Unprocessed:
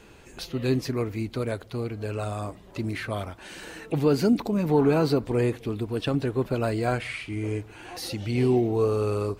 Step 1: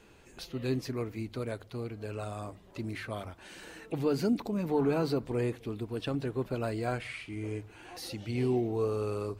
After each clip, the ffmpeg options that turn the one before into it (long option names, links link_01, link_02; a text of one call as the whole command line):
ffmpeg -i in.wav -af "bandreject=frequency=50:width_type=h:width=6,bandreject=frequency=100:width_type=h:width=6,bandreject=frequency=150:width_type=h:width=6,volume=-7dB" out.wav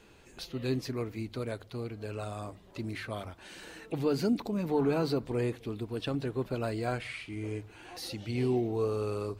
ffmpeg -i in.wav -af "equalizer=frequency=4000:width_type=o:width=0.77:gain=2.5" out.wav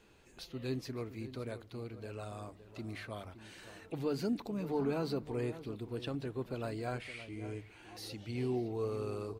ffmpeg -i in.wav -filter_complex "[0:a]asplit=2[link_01][link_02];[link_02]adelay=565.6,volume=-13dB,highshelf=frequency=4000:gain=-12.7[link_03];[link_01][link_03]amix=inputs=2:normalize=0,volume=-6dB" out.wav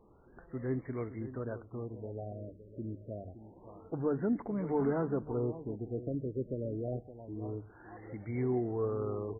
ffmpeg -i in.wav -af "afftfilt=real='re*lt(b*sr/1024,610*pow(2300/610,0.5+0.5*sin(2*PI*0.27*pts/sr)))':imag='im*lt(b*sr/1024,610*pow(2300/610,0.5+0.5*sin(2*PI*0.27*pts/sr)))':win_size=1024:overlap=0.75,volume=3dB" out.wav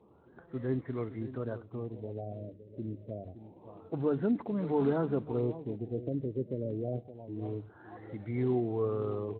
ffmpeg -i in.wav -af "volume=1.5dB" -ar 16000 -c:a libspeex -b:a 21k out.spx